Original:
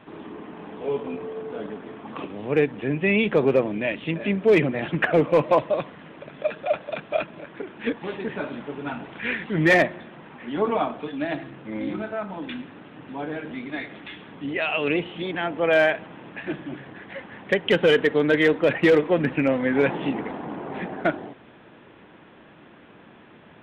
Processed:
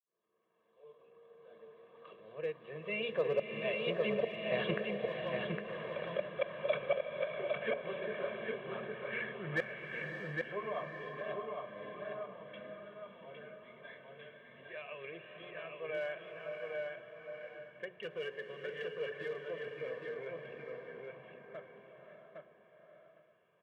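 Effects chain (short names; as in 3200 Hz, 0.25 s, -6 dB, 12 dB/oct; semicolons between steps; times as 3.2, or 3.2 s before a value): opening faded in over 5.42 s; Doppler pass-by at 5.55, 18 m/s, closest 15 m; Bessel high-pass 180 Hz, order 2; notches 60/120/180/240/300/360/420 Hz; comb 1.8 ms, depth 96%; flipped gate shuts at -18 dBFS, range -26 dB; on a send: darkening echo 0.809 s, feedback 16%, low-pass 4800 Hz, level -3 dB; on the sum: bloom reverb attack 0.67 s, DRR 5 dB; gain -3 dB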